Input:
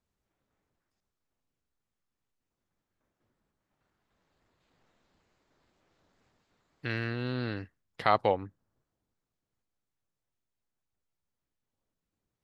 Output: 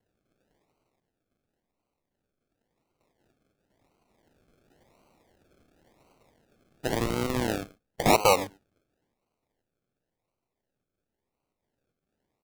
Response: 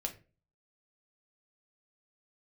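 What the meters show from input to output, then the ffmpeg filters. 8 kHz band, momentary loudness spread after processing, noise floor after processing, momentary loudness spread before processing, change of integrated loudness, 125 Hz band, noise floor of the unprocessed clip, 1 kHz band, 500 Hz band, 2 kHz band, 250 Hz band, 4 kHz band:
can't be measured, 16 LU, −85 dBFS, 16 LU, +5.0 dB, +2.0 dB, below −85 dBFS, +4.0 dB, +5.5 dB, +3.5 dB, +6.5 dB, +9.0 dB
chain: -filter_complex "[0:a]asplit=2[link_01][link_02];[link_02]adelay=110,highpass=300,lowpass=3400,asoftclip=type=hard:threshold=-17dB,volume=-19dB[link_03];[link_01][link_03]amix=inputs=2:normalize=0,asplit=2[link_04][link_05];[link_05]highpass=frequency=720:poles=1,volume=20dB,asoftclip=type=tanh:threshold=-8dB[link_06];[link_04][link_06]amix=inputs=2:normalize=0,lowpass=frequency=1500:poles=1,volume=-6dB,acrusher=samples=36:mix=1:aa=0.000001:lfo=1:lforange=21.6:lforate=0.94"

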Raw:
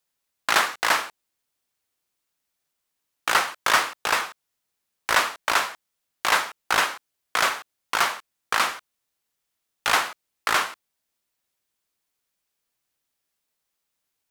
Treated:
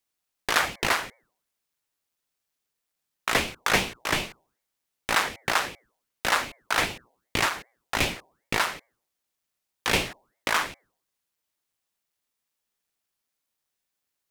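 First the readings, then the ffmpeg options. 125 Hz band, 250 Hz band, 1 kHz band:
+11.5 dB, +6.5 dB, −5.0 dB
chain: -af "bandreject=frequency=121.1:width_type=h:width=4,bandreject=frequency=242.2:width_type=h:width=4,bandreject=frequency=363.3:width_type=h:width=4,bandreject=frequency=484.4:width_type=h:width=4,bandreject=frequency=605.5:width_type=h:width=4,bandreject=frequency=726.6:width_type=h:width=4,bandreject=frequency=847.7:width_type=h:width=4,aeval=exprs='val(0)*sin(2*PI*750*n/s+750*0.9/2.6*sin(2*PI*2.6*n/s))':channel_layout=same"

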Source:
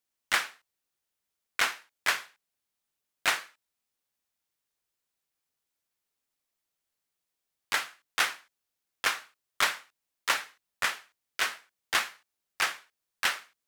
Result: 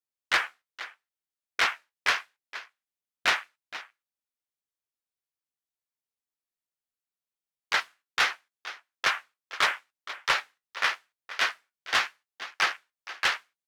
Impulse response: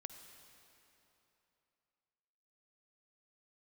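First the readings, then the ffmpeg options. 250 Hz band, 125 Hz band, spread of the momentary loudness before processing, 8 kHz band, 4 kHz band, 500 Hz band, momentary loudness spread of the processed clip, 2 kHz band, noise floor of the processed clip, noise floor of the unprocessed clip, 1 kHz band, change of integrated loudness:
+0.5 dB, can't be measured, 12 LU, −4.0 dB, +2.5 dB, +2.5 dB, 16 LU, +3.0 dB, below −85 dBFS, −85 dBFS, +3.0 dB, +2.5 dB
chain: -filter_complex "[0:a]afwtdn=0.0141,asplit=2[link_01][link_02];[link_02]aecho=0:1:470:0.141[link_03];[link_01][link_03]amix=inputs=2:normalize=0,asoftclip=type=tanh:threshold=-19.5dB,flanger=delay=6.4:depth=9.2:regen=-53:speed=0.8:shape=triangular,volume=9dB"

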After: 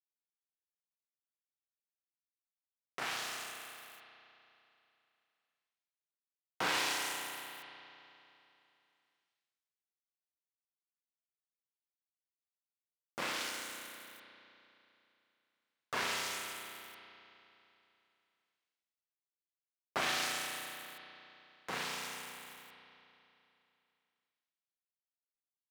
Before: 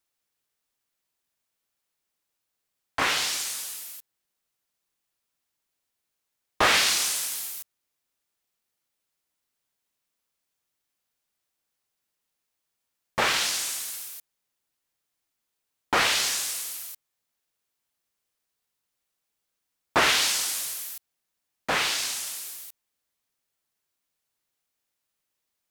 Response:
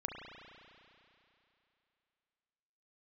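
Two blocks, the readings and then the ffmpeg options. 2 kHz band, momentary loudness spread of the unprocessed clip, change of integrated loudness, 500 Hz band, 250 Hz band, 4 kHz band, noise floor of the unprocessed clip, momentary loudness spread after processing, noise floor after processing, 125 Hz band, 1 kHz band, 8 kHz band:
−11.5 dB, 19 LU, −13.5 dB, −12.0 dB, −10.5 dB, −13.5 dB, −82 dBFS, 21 LU, below −85 dBFS, −11.5 dB, −11.5 dB, −16.5 dB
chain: -filter_complex "[0:a]aeval=exprs='val(0)*sin(2*PI*300*n/s)':channel_layout=same,acompressor=mode=upward:threshold=-30dB:ratio=2.5,aeval=exprs='sgn(val(0))*max(abs(val(0))-0.0178,0)':channel_layout=same,highpass=150,bandreject=frequency=308.1:width_type=h:width=4,bandreject=frequency=616.2:width_type=h:width=4,bandreject=frequency=924.3:width_type=h:width=4,bandreject=frequency=1232.4:width_type=h:width=4,bandreject=frequency=1540.5:width_type=h:width=4,bandreject=frequency=1848.6:width_type=h:width=4,bandreject=frequency=2156.7:width_type=h:width=4,bandreject=frequency=2464.8:width_type=h:width=4,bandreject=frequency=2772.9:width_type=h:width=4,bandreject=frequency=3081:width_type=h:width=4,bandreject=frequency=3389.1:width_type=h:width=4,bandreject=frequency=3697.2:width_type=h:width=4,bandreject=frequency=4005.3:width_type=h:width=4,bandreject=frequency=4313.4:width_type=h:width=4,bandreject=frequency=4621.5:width_type=h:width=4,bandreject=frequency=4929.6:width_type=h:width=4,bandreject=frequency=5237.7:width_type=h:width=4,bandreject=frequency=5545.8:width_type=h:width=4,bandreject=frequency=5853.9:width_type=h:width=4,bandreject=frequency=6162:width_type=h:width=4,bandreject=frequency=6470.1:width_type=h:width=4,bandreject=frequency=6778.2:width_type=h:width=4,bandreject=frequency=7086.3:width_type=h:width=4,bandreject=frequency=7394.4:width_type=h:width=4,bandreject=frequency=7702.5:width_type=h:width=4,bandreject=frequency=8010.6:width_type=h:width=4,bandreject=frequency=8318.7:width_type=h:width=4,bandreject=frequency=8626.8:width_type=h:width=4,bandreject=frequency=8934.9:width_type=h:width=4,bandreject=frequency=9243:width_type=h:width=4,bandreject=frequency=9551.1:width_type=h:width=4,bandreject=frequency=9859.2:width_type=h:width=4,bandreject=frequency=10167.3:width_type=h:width=4,bandreject=frequency=10475.4:width_type=h:width=4,bandreject=frequency=10783.5:width_type=h:width=4,bandreject=frequency=11091.6:width_type=h:width=4,bandreject=frequency=11399.7:width_type=h:width=4,bandreject=frequency=11707.8:width_type=h:width=4[link_01];[1:a]atrim=start_sample=2205[link_02];[link_01][link_02]afir=irnorm=-1:irlink=0,volume=-7.5dB"

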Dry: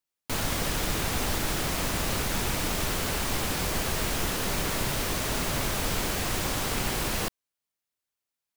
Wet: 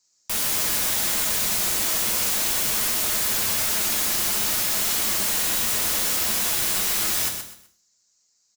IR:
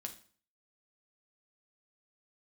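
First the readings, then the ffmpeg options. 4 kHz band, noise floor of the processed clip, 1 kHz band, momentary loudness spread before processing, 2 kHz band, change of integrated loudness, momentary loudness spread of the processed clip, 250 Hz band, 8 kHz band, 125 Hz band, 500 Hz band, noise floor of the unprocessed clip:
+6.0 dB, −67 dBFS, −0.5 dB, 0 LU, +2.5 dB, +8.0 dB, 1 LU, −4.5 dB, +10.0 dB, −9.0 dB, −3.0 dB, below −85 dBFS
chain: -filter_complex "[0:a]bandreject=frequency=3500:width=12,asplit=2[link_01][link_02];[link_02]alimiter=level_in=2dB:limit=-24dB:level=0:latency=1:release=64,volume=-2dB,volume=1dB[link_03];[link_01][link_03]amix=inputs=2:normalize=0,aexciter=amount=10.2:drive=5.5:freq=4400,aresample=16000,asoftclip=type=tanh:threshold=-18dB,aresample=44100,acrusher=bits=4:mode=log:mix=0:aa=0.000001,aeval=exprs='(mod(12.6*val(0)+1,2)-1)/12.6':channel_layout=same,aecho=1:1:126|252|378:0.422|0.118|0.0331[link_04];[1:a]atrim=start_sample=2205[link_05];[link_04][link_05]afir=irnorm=-1:irlink=0,volume=5.5dB"

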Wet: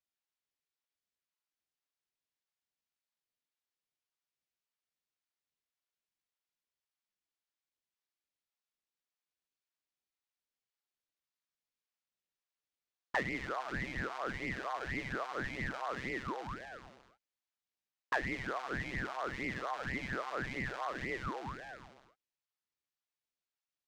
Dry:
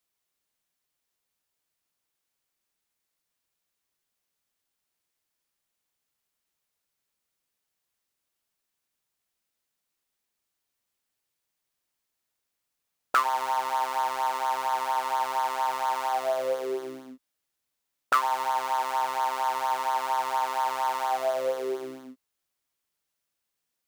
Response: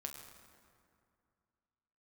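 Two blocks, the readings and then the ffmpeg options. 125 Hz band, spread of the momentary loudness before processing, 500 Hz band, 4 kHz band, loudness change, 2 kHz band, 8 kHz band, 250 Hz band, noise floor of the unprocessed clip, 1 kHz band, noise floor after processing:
can't be measured, 5 LU, −11.5 dB, −10.5 dB, −11.0 dB, −2.0 dB, −16.0 dB, +2.5 dB, −83 dBFS, −16.5 dB, below −85 dBFS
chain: -filter_complex "[0:a]acrossover=split=490 6700:gain=0.0794 1 0.0891[link_01][link_02][link_03];[link_01][link_02][link_03]amix=inputs=3:normalize=0,aeval=exprs='val(0)*sin(2*PI*680*n/s+680*0.8/1.8*sin(2*PI*1.8*n/s))':channel_layout=same,volume=-7.5dB"

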